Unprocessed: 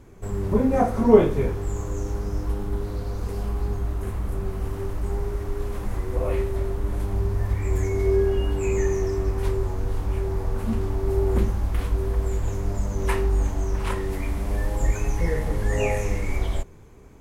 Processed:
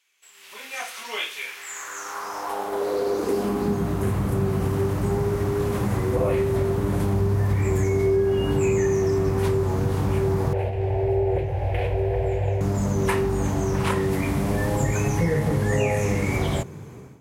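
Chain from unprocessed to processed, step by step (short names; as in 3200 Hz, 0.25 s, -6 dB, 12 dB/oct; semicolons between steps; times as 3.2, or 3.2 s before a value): high-pass sweep 2800 Hz -> 130 Hz, 1.41–4.05; compressor 5:1, threshold -27 dBFS, peak gain reduction 9.5 dB; 10.53–12.61 EQ curve 110 Hz 0 dB, 230 Hz -28 dB, 350 Hz -4 dB, 540 Hz +7 dB, 780 Hz +5 dB, 1200 Hz -20 dB, 1700 Hz -3 dB, 2500 Hz +3 dB, 3500 Hz -8 dB, 6400 Hz -19 dB; AGC gain up to 15 dB; gain -6 dB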